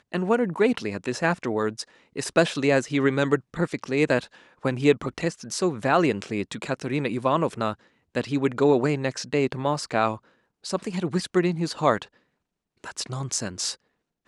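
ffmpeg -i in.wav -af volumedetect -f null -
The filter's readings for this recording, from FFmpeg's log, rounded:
mean_volume: -25.5 dB
max_volume: -5.1 dB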